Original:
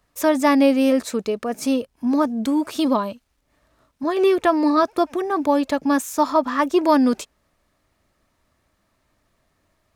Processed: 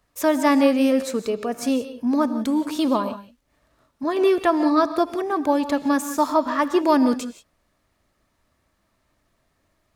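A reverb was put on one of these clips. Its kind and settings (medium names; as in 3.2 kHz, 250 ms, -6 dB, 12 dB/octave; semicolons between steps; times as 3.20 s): gated-style reverb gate 200 ms rising, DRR 11.5 dB; trim -1.5 dB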